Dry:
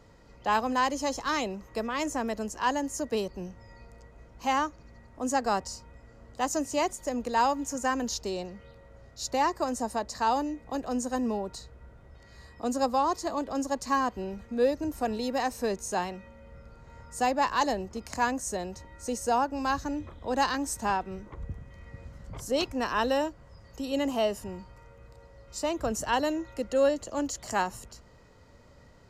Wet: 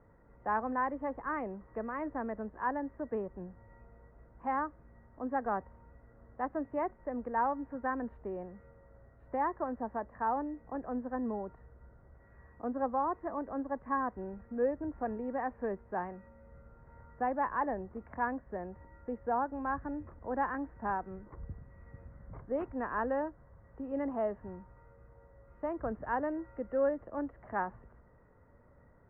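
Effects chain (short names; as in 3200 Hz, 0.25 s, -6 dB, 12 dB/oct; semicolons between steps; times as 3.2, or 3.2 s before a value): steep low-pass 1900 Hz 48 dB/oct; gain -6 dB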